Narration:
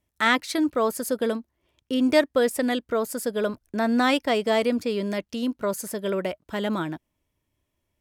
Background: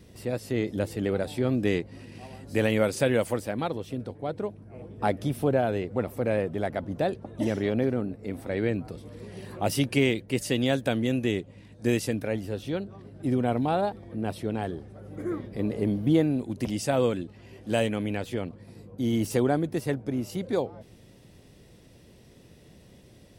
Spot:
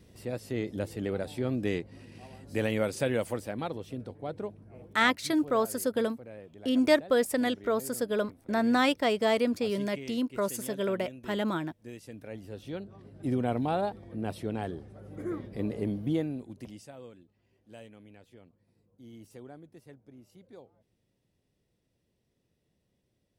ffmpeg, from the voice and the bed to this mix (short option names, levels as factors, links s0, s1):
-filter_complex "[0:a]adelay=4750,volume=0.668[s0];[1:a]volume=3.76,afade=t=out:st=4.73:d=0.36:silence=0.177828,afade=t=in:st=12.01:d=1.29:silence=0.149624,afade=t=out:st=15.61:d=1.32:silence=0.1[s1];[s0][s1]amix=inputs=2:normalize=0"